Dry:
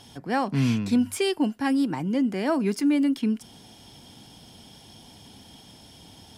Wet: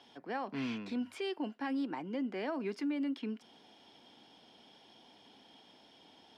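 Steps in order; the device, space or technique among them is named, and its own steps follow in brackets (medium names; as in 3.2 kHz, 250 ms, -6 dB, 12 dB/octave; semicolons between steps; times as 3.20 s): DJ mixer with the lows and highs turned down (three-band isolator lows -23 dB, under 250 Hz, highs -22 dB, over 4.5 kHz; peak limiter -22 dBFS, peak gain reduction 7.5 dB); trim -7 dB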